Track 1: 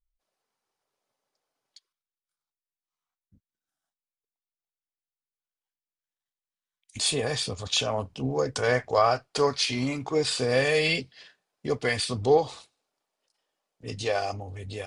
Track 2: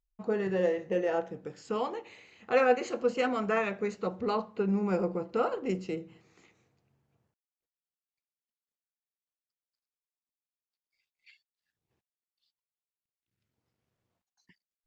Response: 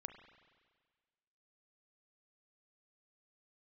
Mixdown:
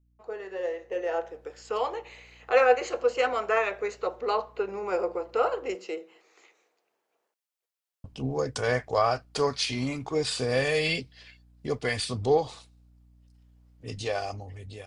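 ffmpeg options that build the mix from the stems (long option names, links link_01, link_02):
-filter_complex "[0:a]aeval=exprs='val(0)+0.00141*(sin(2*PI*60*n/s)+sin(2*PI*2*60*n/s)/2+sin(2*PI*3*60*n/s)/3+sin(2*PI*4*60*n/s)/4+sin(2*PI*5*60*n/s)/5)':channel_layout=same,volume=-11.5dB,asplit=3[link_01][link_02][link_03];[link_01]atrim=end=5.75,asetpts=PTS-STARTPTS,afade=type=out:start_time=5.746:duration=0.004:curve=hsin[link_04];[link_02]atrim=start=5.75:end=8.04,asetpts=PTS-STARTPTS,volume=0[link_05];[link_03]atrim=start=8.04,asetpts=PTS-STARTPTS,afade=type=in:duration=0.004:curve=hsin[link_06];[link_04][link_05][link_06]concat=n=3:v=0:a=1[link_07];[1:a]highpass=frequency=410:width=0.5412,highpass=frequency=410:width=1.3066,volume=-4.5dB[link_08];[link_07][link_08]amix=inputs=2:normalize=0,lowshelf=frequency=69:gain=7,dynaudnorm=framelen=450:gausssize=5:maxgain=9dB"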